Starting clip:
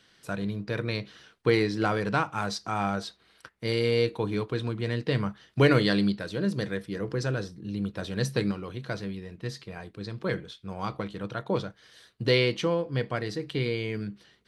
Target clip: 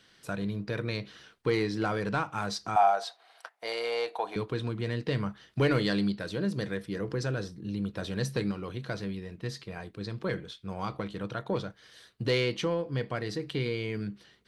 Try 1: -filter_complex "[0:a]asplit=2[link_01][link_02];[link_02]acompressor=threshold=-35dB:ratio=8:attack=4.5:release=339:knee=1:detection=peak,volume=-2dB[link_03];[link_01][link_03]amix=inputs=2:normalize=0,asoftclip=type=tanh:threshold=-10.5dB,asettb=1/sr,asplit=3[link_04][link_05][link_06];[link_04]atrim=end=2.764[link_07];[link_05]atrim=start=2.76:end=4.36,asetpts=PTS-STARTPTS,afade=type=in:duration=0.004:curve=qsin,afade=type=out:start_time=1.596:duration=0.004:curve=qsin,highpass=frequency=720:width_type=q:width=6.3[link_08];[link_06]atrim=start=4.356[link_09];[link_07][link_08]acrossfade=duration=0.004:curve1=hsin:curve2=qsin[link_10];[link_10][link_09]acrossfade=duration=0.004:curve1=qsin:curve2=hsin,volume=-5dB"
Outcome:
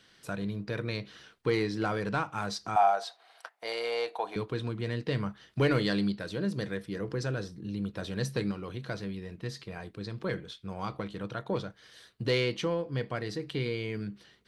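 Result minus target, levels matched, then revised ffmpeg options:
downward compressor: peak gain reduction +5.5 dB
-filter_complex "[0:a]asplit=2[link_01][link_02];[link_02]acompressor=threshold=-29dB:ratio=8:attack=4.5:release=339:knee=1:detection=peak,volume=-2dB[link_03];[link_01][link_03]amix=inputs=2:normalize=0,asoftclip=type=tanh:threshold=-10.5dB,asettb=1/sr,asplit=3[link_04][link_05][link_06];[link_04]atrim=end=2.764[link_07];[link_05]atrim=start=2.76:end=4.36,asetpts=PTS-STARTPTS,afade=type=in:duration=0.004:curve=qsin,afade=type=out:start_time=1.596:duration=0.004:curve=qsin,highpass=frequency=720:width_type=q:width=6.3[link_08];[link_06]atrim=start=4.356[link_09];[link_07][link_08]acrossfade=duration=0.004:curve1=hsin:curve2=qsin[link_10];[link_10][link_09]acrossfade=duration=0.004:curve1=qsin:curve2=hsin,volume=-5dB"

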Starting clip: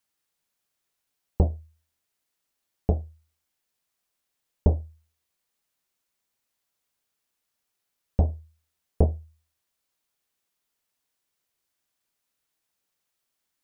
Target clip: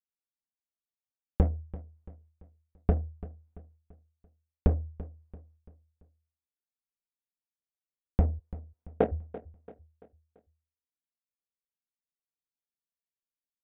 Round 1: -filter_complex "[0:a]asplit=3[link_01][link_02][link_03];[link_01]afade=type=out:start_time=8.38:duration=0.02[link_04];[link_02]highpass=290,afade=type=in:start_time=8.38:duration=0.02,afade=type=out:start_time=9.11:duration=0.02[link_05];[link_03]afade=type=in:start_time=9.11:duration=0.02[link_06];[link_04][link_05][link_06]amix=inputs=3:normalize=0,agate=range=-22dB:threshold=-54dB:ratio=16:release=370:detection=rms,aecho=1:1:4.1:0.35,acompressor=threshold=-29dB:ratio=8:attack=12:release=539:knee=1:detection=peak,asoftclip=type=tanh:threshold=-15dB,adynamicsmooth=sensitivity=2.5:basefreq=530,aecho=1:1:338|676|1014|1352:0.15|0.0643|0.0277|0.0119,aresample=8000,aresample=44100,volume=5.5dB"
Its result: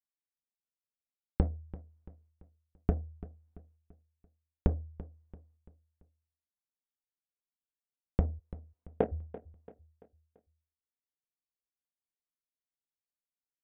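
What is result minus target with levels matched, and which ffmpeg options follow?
downward compressor: peak gain reduction +6 dB
-filter_complex "[0:a]asplit=3[link_01][link_02][link_03];[link_01]afade=type=out:start_time=8.38:duration=0.02[link_04];[link_02]highpass=290,afade=type=in:start_time=8.38:duration=0.02,afade=type=out:start_time=9.11:duration=0.02[link_05];[link_03]afade=type=in:start_time=9.11:duration=0.02[link_06];[link_04][link_05][link_06]amix=inputs=3:normalize=0,agate=range=-22dB:threshold=-54dB:ratio=16:release=370:detection=rms,aecho=1:1:4.1:0.35,acompressor=threshold=-22dB:ratio=8:attack=12:release=539:knee=1:detection=peak,asoftclip=type=tanh:threshold=-15dB,adynamicsmooth=sensitivity=2.5:basefreq=530,aecho=1:1:338|676|1014|1352:0.15|0.0643|0.0277|0.0119,aresample=8000,aresample=44100,volume=5.5dB"

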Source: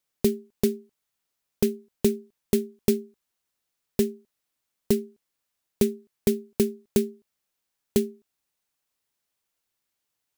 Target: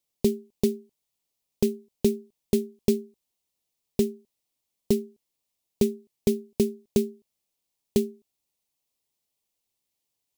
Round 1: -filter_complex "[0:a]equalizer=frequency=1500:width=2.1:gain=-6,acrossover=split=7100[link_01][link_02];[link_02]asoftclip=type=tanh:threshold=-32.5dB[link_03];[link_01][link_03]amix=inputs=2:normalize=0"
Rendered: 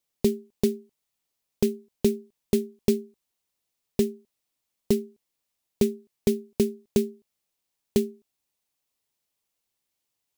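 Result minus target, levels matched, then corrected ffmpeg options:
2,000 Hz band +2.5 dB
-filter_complex "[0:a]equalizer=frequency=1500:width=2.1:gain=-15,acrossover=split=7100[link_01][link_02];[link_02]asoftclip=type=tanh:threshold=-32.5dB[link_03];[link_01][link_03]amix=inputs=2:normalize=0"

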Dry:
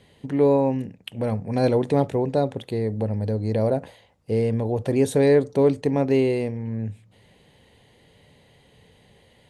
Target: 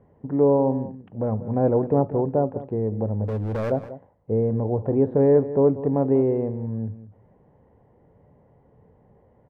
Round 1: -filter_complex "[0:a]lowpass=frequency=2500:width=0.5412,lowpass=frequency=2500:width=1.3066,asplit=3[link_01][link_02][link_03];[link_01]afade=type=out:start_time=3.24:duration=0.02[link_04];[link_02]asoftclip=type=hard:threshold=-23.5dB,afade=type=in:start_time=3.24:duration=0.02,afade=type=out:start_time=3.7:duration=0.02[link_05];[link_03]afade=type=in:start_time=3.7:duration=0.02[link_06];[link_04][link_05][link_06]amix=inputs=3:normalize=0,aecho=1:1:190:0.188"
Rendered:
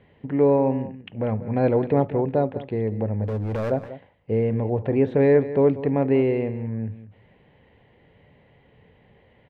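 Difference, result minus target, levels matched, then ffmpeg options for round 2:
2,000 Hz band +10.0 dB
-filter_complex "[0:a]lowpass=frequency=1200:width=0.5412,lowpass=frequency=1200:width=1.3066,asplit=3[link_01][link_02][link_03];[link_01]afade=type=out:start_time=3.24:duration=0.02[link_04];[link_02]asoftclip=type=hard:threshold=-23.5dB,afade=type=in:start_time=3.24:duration=0.02,afade=type=out:start_time=3.7:duration=0.02[link_05];[link_03]afade=type=in:start_time=3.7:duration=0.02[link_06];[link_04][link_05][link_06]amix=inputs=3:normalize=0,aecho=1:1:190:0.188"

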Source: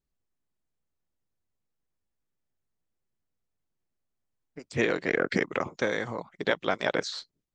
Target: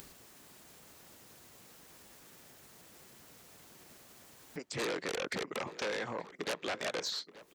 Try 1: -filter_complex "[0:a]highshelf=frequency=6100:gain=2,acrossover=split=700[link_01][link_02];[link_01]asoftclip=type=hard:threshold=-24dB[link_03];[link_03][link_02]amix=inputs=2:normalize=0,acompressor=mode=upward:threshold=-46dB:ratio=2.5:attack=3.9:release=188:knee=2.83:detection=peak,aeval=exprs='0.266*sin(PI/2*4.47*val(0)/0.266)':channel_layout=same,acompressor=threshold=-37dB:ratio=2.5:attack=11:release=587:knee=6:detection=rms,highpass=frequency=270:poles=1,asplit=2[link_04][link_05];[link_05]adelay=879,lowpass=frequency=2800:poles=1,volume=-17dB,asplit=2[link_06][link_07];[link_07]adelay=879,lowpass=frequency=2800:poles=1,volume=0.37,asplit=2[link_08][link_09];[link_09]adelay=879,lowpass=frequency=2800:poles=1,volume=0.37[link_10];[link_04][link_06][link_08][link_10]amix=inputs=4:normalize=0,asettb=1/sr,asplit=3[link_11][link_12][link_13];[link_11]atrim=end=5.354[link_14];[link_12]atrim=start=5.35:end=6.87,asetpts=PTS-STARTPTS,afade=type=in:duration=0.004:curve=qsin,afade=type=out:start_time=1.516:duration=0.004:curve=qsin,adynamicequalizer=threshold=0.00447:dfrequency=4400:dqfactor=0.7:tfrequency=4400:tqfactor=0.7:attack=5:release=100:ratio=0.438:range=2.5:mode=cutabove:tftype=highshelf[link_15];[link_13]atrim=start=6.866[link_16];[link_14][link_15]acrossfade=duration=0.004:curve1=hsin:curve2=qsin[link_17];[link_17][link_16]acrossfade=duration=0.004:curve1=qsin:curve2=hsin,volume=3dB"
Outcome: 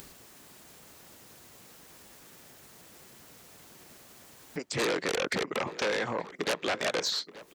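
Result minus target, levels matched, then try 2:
downward compressor: peak gain reduction −6.5 dB
-filter_complex "[0:a]highshelf=frequency=6100:gain=2,acrossover=split=700[link_01][link_02];[link_01]asoftclip=type=hard:threshold=-24dB[link_03];[link_03][link_02]amix=inputs=2:normalize=0,acompressor=mode=upward:threshold=-46dB:ratio=2.5:attack=3.9:release=188:knee=2.83:detection=peak,aeval=exprs='0.266*sin(PI/2*4.47*val(0)/0.266)':channel_layout=same,acompressor=threshold=-48dB:ratio=2.5:attack=11:release=587:knee=6:detection=rms,highpass=frequency=270:poles=1,asplit=2[link_04][link_05];[link_05]adelay=879,lowpass=frequency=2800:poles=1,volume=-17dB,asplit=2[link_06][link_07];[link_07]adelay=879,lowpass=frequency=2800:poles=1,volume=0.37,asplit=2[link_08][link_09];[link_09]adelay=879,lowpass=frequency=2800:poles=1,volume=0.37[link_10];[link_04][link_06][link_08][link_10]amix=inputs=4:normalize=0,asettb=1/sr,asplit=3[link_11][link_12][link_13];[link_11]atrim=end=5.354[link_14];[link_12]atrim=start=5.35:end=6.87,asetpts=PTS-STARTPTS,afade=type=in:duration=0.004:curve=qsin,afade=type=out:start_time=1.516:duration=0.004:curve=qsin,adynamicequalizer=threshold=0.00447:dfrequency=4400:dqfactor=0.7:tfrequency=4400:tqfactor=0.7:attack=5:release=100:ratio=0.438:range=2.5:mode=cutabove:tftype=highshelf[link_15];[link_13]atrim=start=6.866[link_16];[link_14][link_15]acrossfade=duration=0.004:curve1=hsin:curve2=qsin[link_17];[link_17][link_16]acrossfade=duration=0.004:curve1=qsin:curve2=hsin,volume=3dB"

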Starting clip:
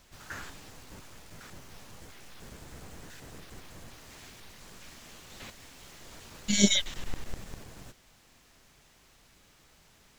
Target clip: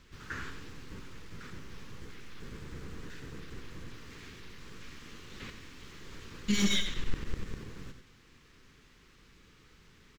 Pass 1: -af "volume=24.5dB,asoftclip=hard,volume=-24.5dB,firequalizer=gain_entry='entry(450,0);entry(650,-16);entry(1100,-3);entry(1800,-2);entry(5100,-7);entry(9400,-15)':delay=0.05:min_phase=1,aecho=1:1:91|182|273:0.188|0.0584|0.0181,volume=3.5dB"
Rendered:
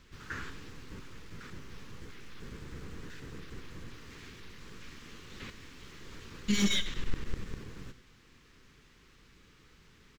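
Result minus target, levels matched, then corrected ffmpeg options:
echo-to-direct −6 dB
-af "volume=24.5dB,asoftclip=hard,volume=-24.5dB,firequalizer=gain_entry='entry(450,0);entry(650,-16);entry(1100,-3);entry(1800,-2);entry(5100,-7);entry(9400,-15)':delay=0.05:min_phase=1,aecho=1:1:91|182|273|364:0.376|0.117|0.0361|0.0112,volume=3.5dB"

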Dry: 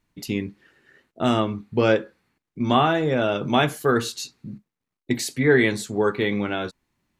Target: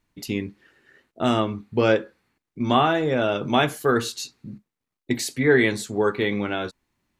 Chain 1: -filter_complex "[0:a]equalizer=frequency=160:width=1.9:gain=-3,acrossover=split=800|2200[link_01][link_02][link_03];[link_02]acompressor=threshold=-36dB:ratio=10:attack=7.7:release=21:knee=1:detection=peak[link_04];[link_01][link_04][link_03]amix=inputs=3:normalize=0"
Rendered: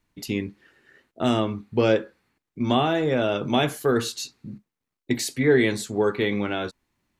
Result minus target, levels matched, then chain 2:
downward compressor: peak gain reduction +14 dB
-af "equalizer=frequency=160:width=1.9:gain=-3"

